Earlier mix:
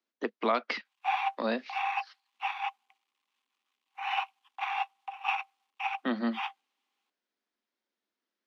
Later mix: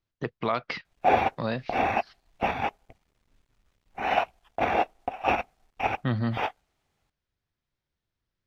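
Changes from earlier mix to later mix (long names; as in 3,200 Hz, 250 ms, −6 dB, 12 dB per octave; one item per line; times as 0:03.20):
background: remove Chebyshev high-pass with heavy ripple 760 Hz, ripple 9 dB
master: remove Butterworth high-pass 210 Hz 72 dB per octave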